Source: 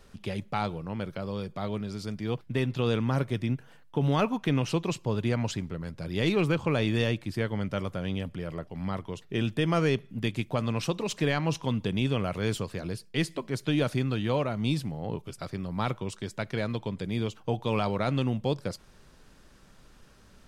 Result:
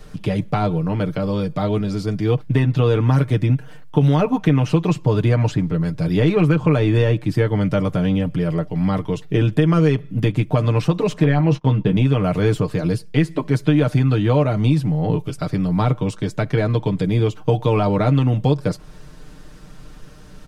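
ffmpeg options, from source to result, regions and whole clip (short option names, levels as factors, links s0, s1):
-filter_complex "[0:a]asettb=1/sr,asplit=3[s0][s1][s2];[s0]atrim=end=11.244[s3];[s1]atrim=start=11.24:end=11.97,asetpts=PTS-STARTPTS,afade=t=in:d=0.004:c=qsin,afade=t=out:st=0.726:d=0.004:c=qsin,aemphasis=mode=reproduction:type=75kf,agate=range=0.0501:threshold=0.0112:ratio=16:release=100:detection=peak,asplit=2[s4][s5];[s5]adelay=15,volume=0.376[s6];[s4][s6]amix=inputs=2:normalize=0,atrim=end_sample=32193[s7];[s2]atrim=start=11.966[s8];[s3][s7]acrossfade=d=0.004:c1=hsin:c2=qsin[s9];[s9][s8]acrossfade=d=0.004:c1=qsin:c2=hsin,lowshelf=f=440:g=6.5,aecho=1:1:6.6:0.68,acrossover=split=790|2000[s10][s11][s12];[s10]acompressor=threshold=0.0891:ratio=4[s13];[s11]acompressor=threshold=0.0178:ratio=4[s14];[s12]acompressor=threshold=0.00501:ratio=4[s15];[s13][s14][s15]amix=inputs=3:normalize=0,volume=2.51"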